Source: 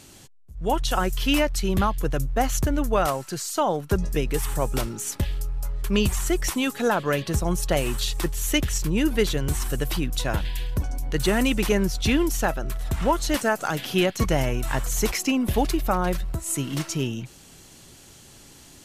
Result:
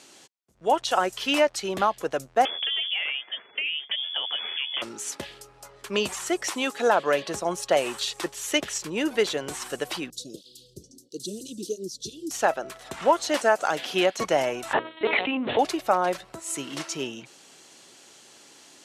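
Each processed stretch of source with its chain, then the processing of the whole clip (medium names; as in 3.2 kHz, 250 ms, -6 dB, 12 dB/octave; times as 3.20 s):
2.45–4.82 s: bass shelf 140 Hz -10.5 dB + compression 10:1, threshold -23 dBFS + frequency inversion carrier 3.4 kHz
10.10–12.31 s: inverse Chebyshev band-stop 780–2200 Hz, stop band 50 dB + cancelling through-zero flanger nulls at 1.5 Hz, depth 4.3 ms
14.73–15.59 s: LPC vocoder at 8 kHz pitch kept + hum notches 60/120/180/240/300/360/420/480/540 Hz + level flattener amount 70%
whole clip: high-pass 370 Hz 12 dB/octave; dynamic bell 660 Hz, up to +5 dB, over -38 dBFS, Q 1.5; low-pass 8.1 kHz 12 dB/octave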